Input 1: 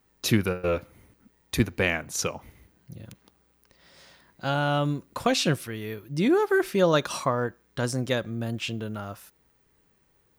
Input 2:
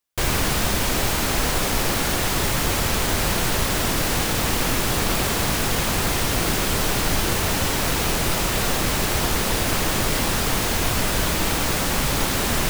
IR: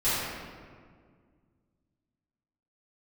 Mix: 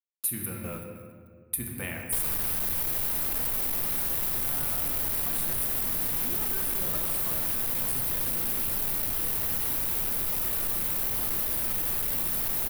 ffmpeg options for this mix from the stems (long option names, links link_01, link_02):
-filter_complex "[0:a]highshelf=frequency=7200:width_type=q:width=3:gain=9,acrusher=bits=6:mix=0:aa=0.5,equalizer=frequency=440:width_type=o:width=0.77:gain=-7,volume=-12dB,asplit=2[link_01][link_02];[link_02]volume=-13.5dB[link_03];[1:a]asoftclip=type=tanh:threshold=-24.5dB,adelay=1950,volume=-2.5dB,asplit=2[link_04][link_05];[link_05]volume=-19.5dB[link_06];[2:a]atrim=start_sample=2205[link_07];[link_03][link_06]amix=inputs=2:normalize=0[link_08];[link_08][link_07]afir=irnorm=-1:irlink=0[link_09];[link_01][link_04][link_09]amix=inputs=3:normalize=0,aexciter=amount=7.7:drive=2.6:freq=9600,acompressor=threshold=-28dB:ratio=3"